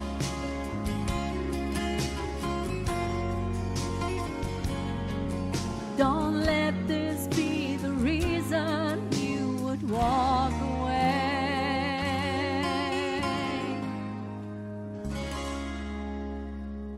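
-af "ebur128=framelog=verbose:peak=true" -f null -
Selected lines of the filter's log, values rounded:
Integrated loudness:
  I:         -29.8 LUFS
  Threshold: -39.8 LUFS
Loudness range:
  LRA:         4.5 LU
  Threshold: -49.3 LUFS
  LRA low:   -32.1 LUFS
  LRA high:  -27.5 LUFS
True peak:
  Peak:      -12.0 dBFS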